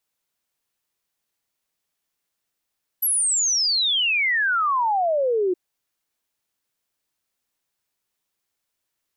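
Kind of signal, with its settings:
exponential sine sweep 12,000 Hz → 350 Hz 2.52 s −18 dBFS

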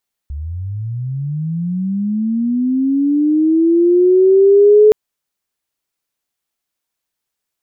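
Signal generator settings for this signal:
glide linear 68 Hz → 430 Hz −22 dBFS → −4 dBFS 4.62 s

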